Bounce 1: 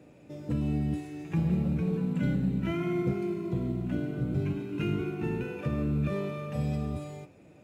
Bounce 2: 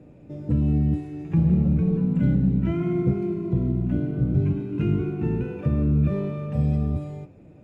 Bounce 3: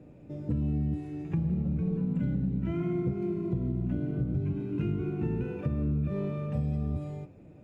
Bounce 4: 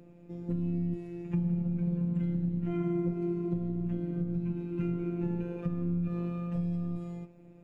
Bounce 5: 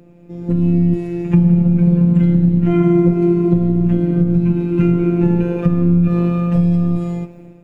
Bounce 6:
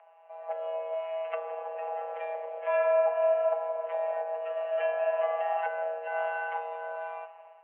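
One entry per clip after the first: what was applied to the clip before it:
tilt -3 dB/oct
compressor, threshold -23 dBFS, peak gain reduction 8 dB; gain -3 dB
robotiser 173 Hz
AGC gain up to 10 dB; gain +8 dB
mistuned SSB +300 Hz 390–2400 Hz; gain -4 dB

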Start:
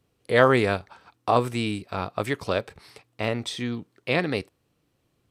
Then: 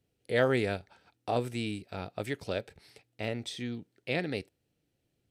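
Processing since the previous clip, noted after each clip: bell 1100 Hz -14 dB 0.45 oct; gain -7 dB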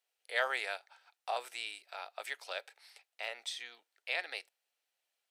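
HPF 750 Hz 24 dB/oct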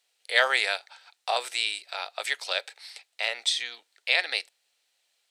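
graphic EQ 250/500/1000/2000/4000/8000 Hz +4/+4/+3/+5/+10/+9 dB; gain +3.5 dB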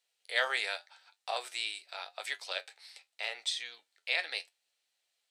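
flange 0.83 Hz, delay 9.8 ms, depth 2.9 ms, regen +59%; gain -4 dB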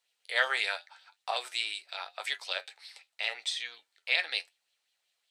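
LFO bell 5.4 Hz 940–3700 Hz +8 dB

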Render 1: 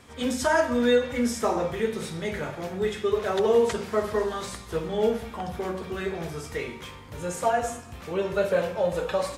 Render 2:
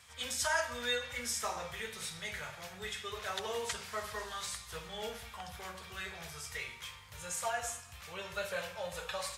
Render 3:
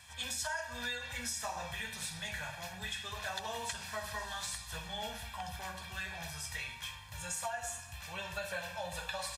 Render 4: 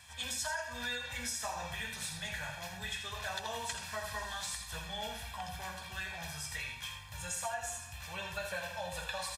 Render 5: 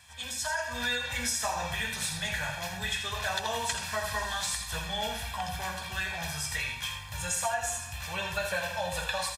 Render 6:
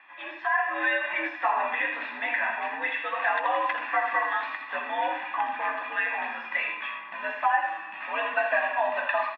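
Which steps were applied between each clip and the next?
HPF 62 Hz; passive tone stack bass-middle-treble 10-0-10
comb 1.2 ms, depth 70%; compressor 6:1, threshold -36 dBFS, peak gain reduction 12 dB; gain +1 dB
echo 82 ms -8.5 dB
AGC gain up to 7.5 dB
mistuned SSB +84 Hz 260–2400 Hz; gain +7.5 dB

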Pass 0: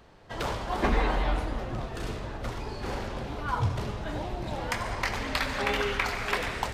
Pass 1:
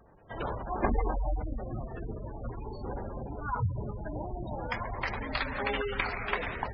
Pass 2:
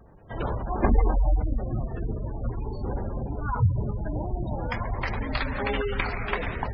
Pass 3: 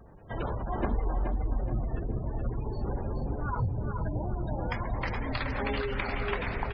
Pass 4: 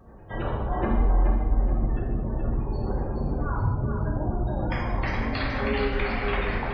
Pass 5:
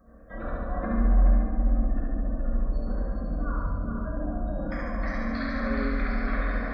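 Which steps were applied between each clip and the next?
added harmonics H 2 -8 dB, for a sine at -12.5 dBFS; spectral gate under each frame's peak -15 dB strong; gain -2.5 dB
low shelf 320 Hz +8 dB; gain +1.5 dB
compressor 2.5:1, threshold -30 dBFS, peak gain reduction 11 dB; feedback echo 0.424 s, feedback 32%, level -6 dB
non-linear reverb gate 0.29 s falling, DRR -3 dB
fixed phaser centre 580 Hz, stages 8; flutter echo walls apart 12 m, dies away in 1.2 s; gain -3 dB

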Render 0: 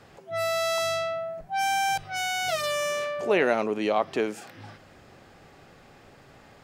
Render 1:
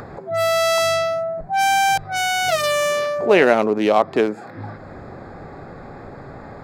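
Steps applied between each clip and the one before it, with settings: Wiener smoothing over 15 samples; in parallel at -2 dB: upward compressor, threshold -28 dBFS; on the sum: gain +4 dB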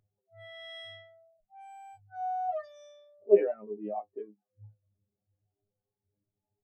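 low shelf 230 Hz +3 dB; metallic resonator 100 Hz, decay 0.23 s, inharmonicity 0.002; spectral expander 2.5:1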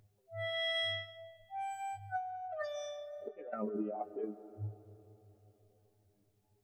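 negative-ratio compressor -43 dBFS, ratio -1; flange 0.46 Hz, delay 2.8 ms, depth 1 ms, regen -76%; on a send at -15 dB: reverb RT60 3.5 s, pre-delay 90 ms; on the sum: gain +6.5 dB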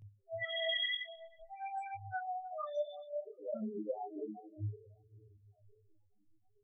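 phaser 0.57 Hz, delay 4.2 ms, feedback 69%; loudest bins only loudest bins 4; detuned doubles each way 15 cents; gain +4 dB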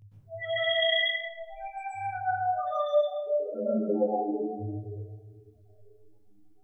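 plate-style reverb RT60 0.91 s, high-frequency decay 0.5×, pre-delay 0.11 s, DRR -9 dB; gain +1.5 dB

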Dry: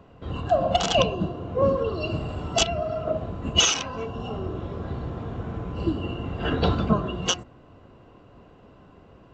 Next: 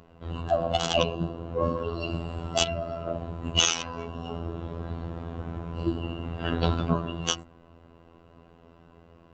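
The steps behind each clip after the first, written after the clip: robotiser 83.8 Hz; gain -1 dB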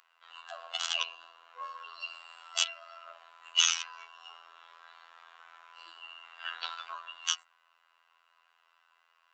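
HPF 1200 Hz 24 dB/oct; gain -2 dB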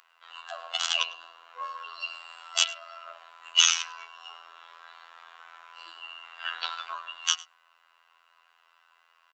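echo 0.102 s -21.5 dB; gain +5 dB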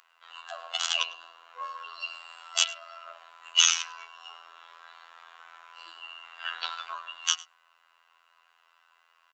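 bell 6800 Hz +2.5 dB 0.29 oct; gain -1 dB

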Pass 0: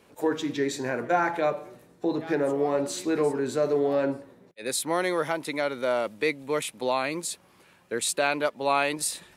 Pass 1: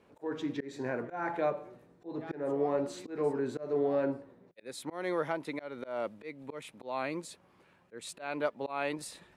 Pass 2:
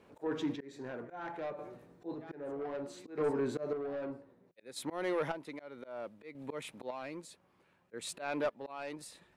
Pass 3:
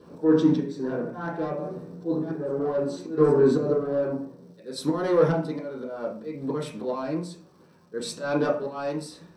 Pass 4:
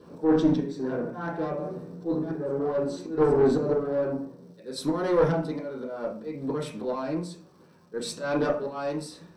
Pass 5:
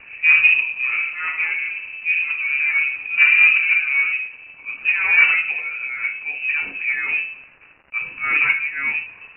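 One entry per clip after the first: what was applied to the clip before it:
high shelf 11000 Hz -6 dB; auto swell 0.205 s; high shelf 3100 Hz -11.5 dB; gain -4.5 dB
soft clip -28 dBFS, distortion -13 dB; chopper 0.63 Hz, depth 60%, duty 35%; gain +2 dB
crackle 530/s -63 dBFS; reverb RT60 0.45 s, pre-delay 3 ms, DRR -3.5 dB
one diode to ground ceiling -16 dBFS
gate with hold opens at -46 dBFS; crackle 430/s -42 dBFS; inverted band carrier 2800 Hz; gain +7.5 dB

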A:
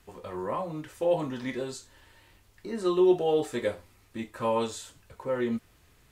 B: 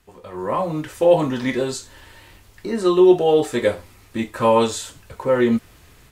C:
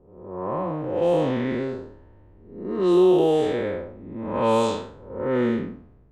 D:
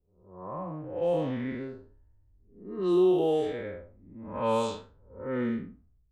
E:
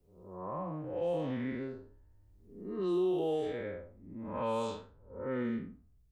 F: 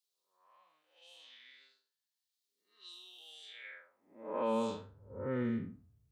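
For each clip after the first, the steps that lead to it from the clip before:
AGC gain up to 12 dB
time blur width 0.287 s; low-pass opened by the level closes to 460 Hz, open at -14.5 dBFS
per-bin expansion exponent 1.5; gain -5 dB
in parallel at -1.5 dB: limiter -24.5 dBFS, peak gain reduction 9 dB; on the sum: three-band squash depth 40%; gain -9 dB
high-pass sweep 3900 Hz -> 100 Hz, 3.46–4.86; gain -1.5 dB

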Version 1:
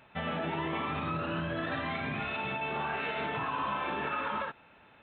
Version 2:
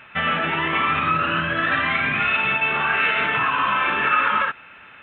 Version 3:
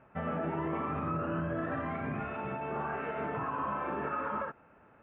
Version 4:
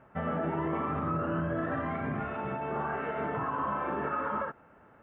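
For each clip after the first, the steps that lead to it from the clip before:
band shelf 1900 Hz +11 dB; gain +6 dB
Chebyshev low-pass 620 Hz, order 2; gain -4.5 dB
notch 2500 Hz, Q 8; gain +2.5 dB

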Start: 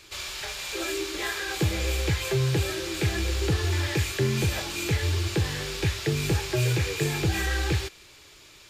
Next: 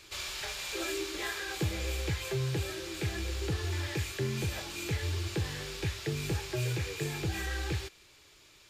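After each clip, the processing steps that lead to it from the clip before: vocal rider within 5 dB 2 s; gain -7.5 dB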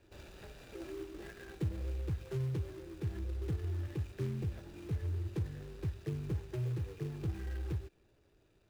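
median filter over 41 samples; dynamic EQ 680 Hz, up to -6 dB, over -52 dBFS, Q 0.73; gain -2 dB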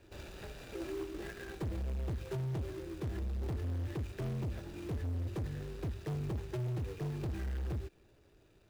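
hard clip -38.5 dBFS, distortion -8 dB; gain +4.5 dB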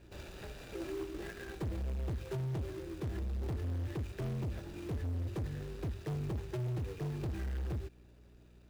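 hum 60 Hz, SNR 22 dB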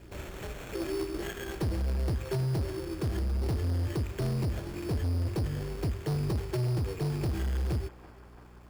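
sample-and-hold 9×; narrowing echo 0.338 s, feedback 85%, band-pass 1100 Hz, level -13 dB; gain +7 dB

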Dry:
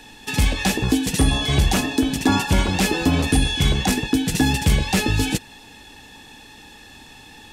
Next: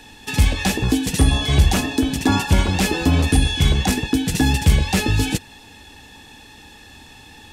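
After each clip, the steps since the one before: bell 76 Hz +6.5 dB 0.78 oct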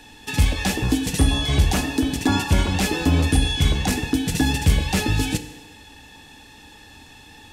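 FDN reverb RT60 1.2 s, low-frequency decay 0.75×, high-frequency decay 0.85×, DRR 9.5 dB; gain -2.5 dB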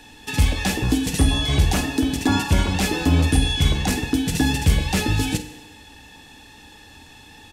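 doubler 49 ms -14 dB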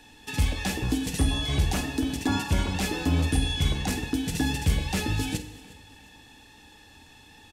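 feedback echo 0.357 s, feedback 39%, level -21 dB; gain -6.5 dB

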